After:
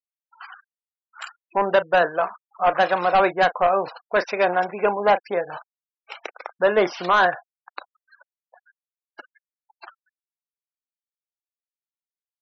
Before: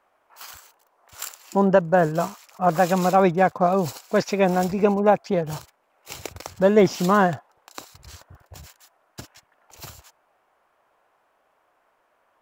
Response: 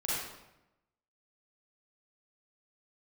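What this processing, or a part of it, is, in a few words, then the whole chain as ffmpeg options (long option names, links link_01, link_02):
megaphone: -filter_complex "[0:a]asettb=1/sr,asplit=3[link_01][link_02][link_03];[link_01]atrim=end=2.024[link_04];[link_02]atrim=start=2.02:end=2.74,asetpts=PTS-STARTPTS,afade=type=in:duration=0.004:curve=qsin,afade=type=out:start_time=0.716:duration=0.004:curve=qsin,highpass=120[link_05];[link_03]atrim=start=2.736[link_06];[link_04][link_05]acrossfade=duration=0.004:curve1=hsin:curve2=qsin[link_07];[link_07][link_06]acrossfade=duration=0.004:curve1=qsin:curve2=hsin,highpass=550,lowpass=3700,equalizer=frequency=1600:width_type=o:width=0.6:gain=5,asoftclip=type=hard:threshold=-15dB,asplit=2[link_08][link_09];[link_09]adelay=34,volume=-13dB[link_10];[link_08][link_10]amix=inputs=2:normalize=0,afftfilt=real='re*gte(hypot(re,im),0.0141)':imag='im*gte(hypot(re,im),0.0141)':win_size=1024:overlap=0.75,volume=3.5dB"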